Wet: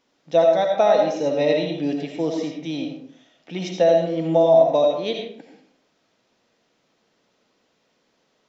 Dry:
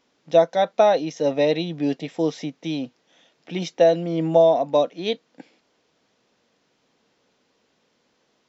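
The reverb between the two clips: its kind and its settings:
comb and all-pass reverb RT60 0.64 s, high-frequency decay 0.6×, pre-delay 40 ms, DRR 1.5 dB
level −2 dB

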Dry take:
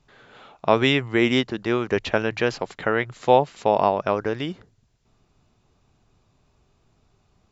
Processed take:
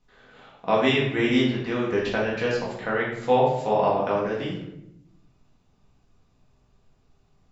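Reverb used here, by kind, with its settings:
rectangular room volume 220 cubic metres, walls mixed, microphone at 1.9 metres
level −8.5 dB

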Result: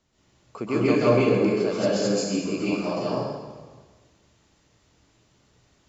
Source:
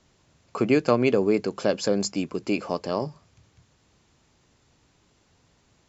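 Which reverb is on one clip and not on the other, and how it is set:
dense smooth reverb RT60 1.4 s, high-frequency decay 0.9×, pre-delay 115 ms, DRR −9 dB
level −8.5 dB

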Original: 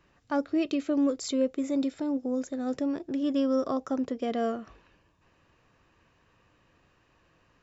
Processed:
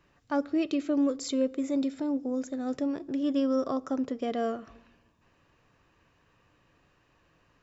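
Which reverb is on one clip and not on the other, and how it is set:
rectangular room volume 3,600 cubic metres, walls furnished, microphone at 0.34 metres
level −1 dB

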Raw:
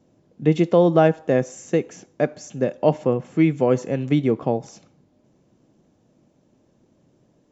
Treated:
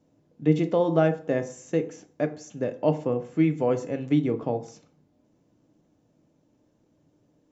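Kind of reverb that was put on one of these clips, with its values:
feedback delay network reverb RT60 0.43 s, low-frequency decay 1.05×, high-frequency decay 0.55×, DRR 7 dB
level −6.5 dB

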